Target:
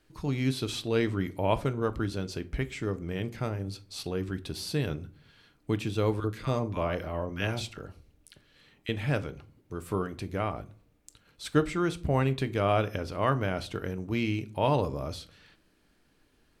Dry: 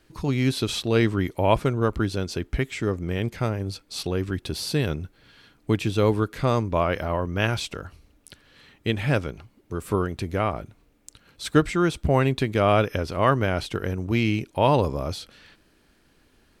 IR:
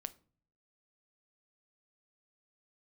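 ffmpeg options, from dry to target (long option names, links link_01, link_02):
-filter_complex "[0:a]asettb=1/sr,asplit=3[link_01][link_02][link_03];[link_01]atrim=end=6.204[link_04];[link_02]atrim=start=6.2:end=8.89,asetpts=PTS-STARTPTS,afade=type=in:duration=0.004:curve=qsin,afade=type=out:start_time=2.686:duration=0.004:curve=qsin,acrossover=split=1100[link_05][link_06];[link_05]adelay=40[link_07];[link_07][link_06]amix=inputs=2:normalize=0,atrim=end_sample=118629[link_08];[link_03]atrim=start=8.886[link_09];[link_04][link_08]acrossfade=duration=0.004:curve1=hsin:curve2=qsin[link_10];[link_10][link_09]acrossfade=duration=0.004:curve1=qsin:curve2=hsin[link_11];[1:a]atrim=start_sample=2205[link_12];[link_11][link_12]afir=irnorm=-1:irlink=0,volume=-3.5dB"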